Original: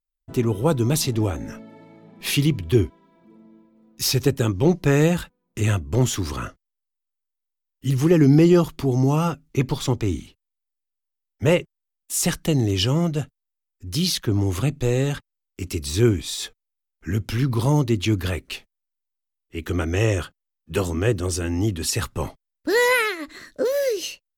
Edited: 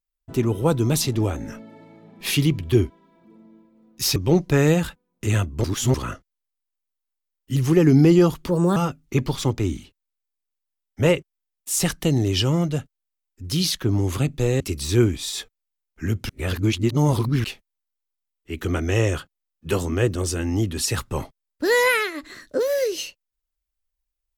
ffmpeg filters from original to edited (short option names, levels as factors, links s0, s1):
-filter_complex "[0:a]asplit=9[s0][s1][s2][s3][s4][s5][s6][s7][s8];[s0]atrim=end=4.162[s9];[s1]atrim=start=4.498:end=5.982[s10];[s2]atrim=start=5.978:end=6.282,asetpts=PTS-STARTPTS,areverse[s11];[s3]atrim=start=6.278:end=8.824[s12];[s4]atrim=start=8.82:end=9.19,asetpts=PTS-STARTPTS,asetrate=57771,aresample=44100[s13];[s5]atrim=start=9.186:end=15.032[s14];[s6]atrim=start=15.648:end=17.342[s15];[s7]atrim=start=17.338:end=18.492,asetpts=PTS-STARTPTS,areverse[s16];[s8]atrim=start=18.488[s17];[s9][s10]acrossfade=d=0.004:c1=hsin:c2=hsin[s18];[s18][s11]acrossfade=d=0.004:c1=hsin:c2=hsin[s19];[s19][s12]acrossfade=d=0.004:c1=hsin:c2=hsin[s20];[s20][s13]acrossfade=d=0.004:c1=hsin:c2=hsin[s21];[s21][s14]acrossfade=d=0.004:c1=hsin:c2=hsin[s22];[s22][s15]acrossfade=d=0.004:c1=hsin:c2=hsin[s23];[s23][s16]acrossfade=d=0.004:c1=hsin:c2=hsin[s24];[s24][s17]acrossfade=d=0.004:c1=hsin:c2=hsin"